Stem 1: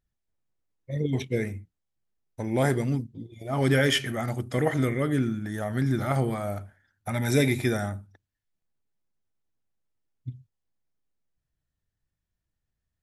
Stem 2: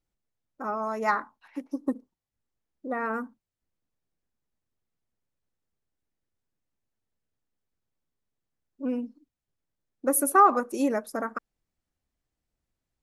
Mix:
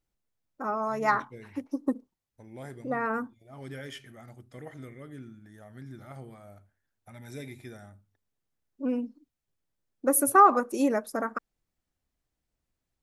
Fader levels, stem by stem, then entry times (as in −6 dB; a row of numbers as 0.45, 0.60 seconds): −19.0, +0.5 decibels; 0.00, 0.00 seconds